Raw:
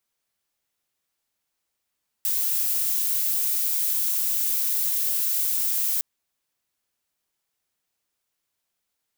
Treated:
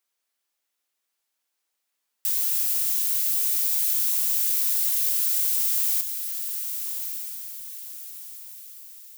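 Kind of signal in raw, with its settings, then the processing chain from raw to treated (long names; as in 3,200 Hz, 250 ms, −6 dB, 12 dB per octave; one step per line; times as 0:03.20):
noise violet, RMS −24 dBFS 3.76 s
linear-phase brick-wall high-pass 190 Hz
low-shelf EQ 460 Hz −7 dB
feedback delay with all-pass diffusion 1,204 ms, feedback 40%, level −7 dB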